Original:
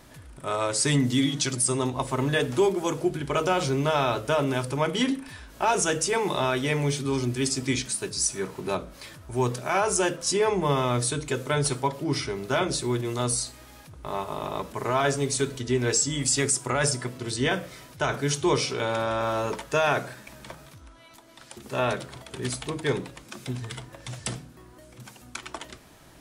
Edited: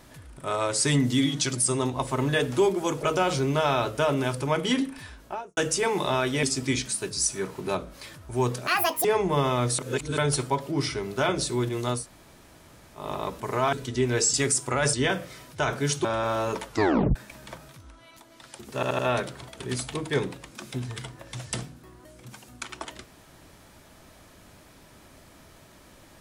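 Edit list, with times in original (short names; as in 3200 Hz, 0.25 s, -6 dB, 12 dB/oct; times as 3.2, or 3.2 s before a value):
3.03–3.33 cut
5.36–5.87 studio fade out
6.73–7.43 cut
9.67–10.37 speed 186%
11.11–11.5 reverse
13.31–14.33 room tone, crossfade 0.16 s
15.05–15.45 cut
16.06–16.32 cut
16.92–17.35 cut
18.46–19.02 cut
19.63 tape stop 0.50 s
21.72 stutter 0.08 s, 4 plays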